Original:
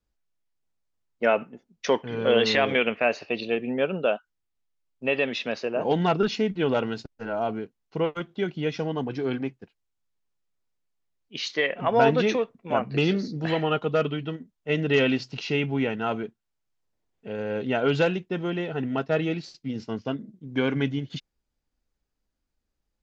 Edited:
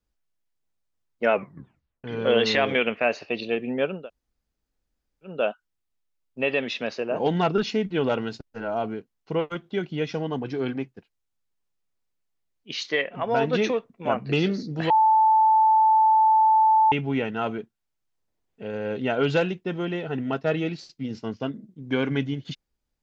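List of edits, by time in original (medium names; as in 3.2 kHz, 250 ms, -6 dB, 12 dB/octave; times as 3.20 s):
1.33 s: tape stop 0.71 s
3.98 s: insert room tone 1.35 s, crossfade 0.24 s
11.69–12.18 s: gain -4 dB
13.55–15.57 s: bleep 877 Hz -14.5 dBFS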